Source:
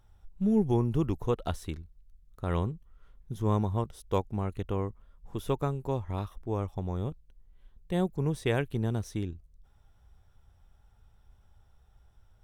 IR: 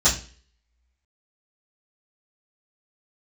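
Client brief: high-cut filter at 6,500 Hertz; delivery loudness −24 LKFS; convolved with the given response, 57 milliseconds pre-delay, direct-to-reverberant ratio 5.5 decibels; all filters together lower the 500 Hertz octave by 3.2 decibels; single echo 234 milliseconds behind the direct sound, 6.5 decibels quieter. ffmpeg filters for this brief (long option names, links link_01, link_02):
-filter_complex "[0:a]lowpass=6500,equalizer=frequency=500:width_type=o:gain=-4,aecho=1:1:234:0.473,asplit=2[link_01][link_02];[1:a]atrim=start_sample=2205,adelay=57[link_03];[link_02][link_03]afir=irnorm=-1:irlink=0,volume=-21.5dB[link_04];[link_01][link_04]amix=inputs=2:normalize=0,volume=6dB"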